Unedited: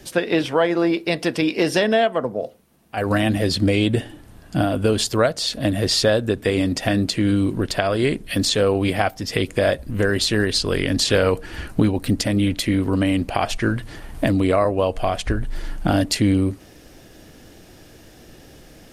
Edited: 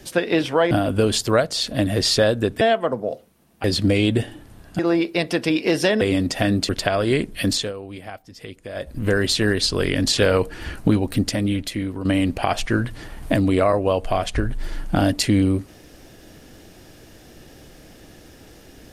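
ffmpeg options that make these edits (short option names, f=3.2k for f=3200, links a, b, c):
-filter_complex "[0:a]asplit=10[a][b][c][d][e][f][g][h][i][j];[a]atrim=end=0.712[k];[b]atrim=start=4.568:end=6.472[l];[c]atrim=start=1.928:end=2.962[m];[d]atrim=start=3.418:end=4.572[n];[e]atrim=start=0.708:end=1.932[o];[f]atrim=start=6.468:end=7.152[p];[g]atrim=start=7.608:end=8.65,asetpts=PTS-STARTPTS,afade=t=out:st=0.812:d=0.23:silence=0.16788[q];[h]atrim=start=8.65:end=9.66,asetpts=PTS-STARTPTS,volume=-15.5dB[r];[i]atrim=start=9.66:end=12.97,asetpts=PTS-STARTPTS,afade=t=in:d=0.23:silence=0.16788,afade=t=out:st=2.37:d=0.94:silence=0.316228[s];[j]atrim=start=12.97,asetpts=PTS-STARTPTS,afade=t=in:d=0.004:c=hsin:silence=0.316228[t];[k][l]acrossfade=d=0.004:c1=hsin:c2=hsin[u];[u][m]acrossfade=d=0.004:c1=hsin:c2=hsin[v];[v][n]acrossfade=d=0.004:c1=hsin:c2=hsin[w];[w][o]acrossfade=d=0.004:c1=hsin:c2=hsin[x];[x][p]acrossfade=d=0.004:c1=hsin:c2=hsin[y];[q][r][s][t]concat=n=4:v=0:a=1[z];[y][z]acrossfade=d=0.004:c1=hsin:c2=hsin"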